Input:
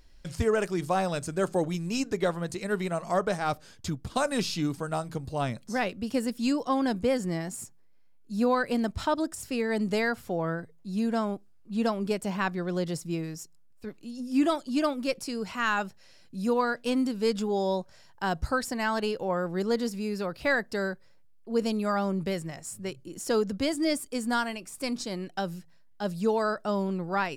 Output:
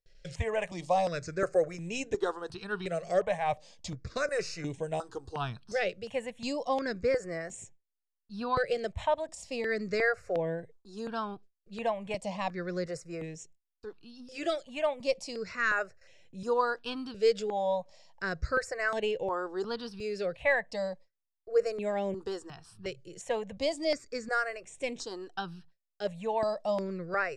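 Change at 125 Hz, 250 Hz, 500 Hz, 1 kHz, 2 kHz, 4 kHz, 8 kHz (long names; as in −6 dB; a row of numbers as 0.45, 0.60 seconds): −7.5, −11.0, −1.0, −3.0, −0.5, −4.0, −7.0 decibels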